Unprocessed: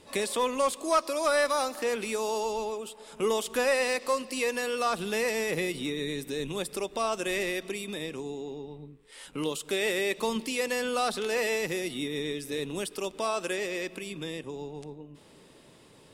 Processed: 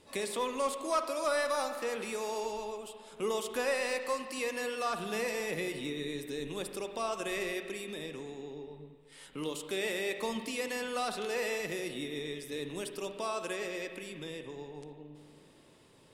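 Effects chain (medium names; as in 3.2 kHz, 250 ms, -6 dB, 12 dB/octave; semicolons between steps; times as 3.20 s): spring tank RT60 1.8 s, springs 47/57 ms, chirp 30 ms, DRR 7 dB; trim -6 dB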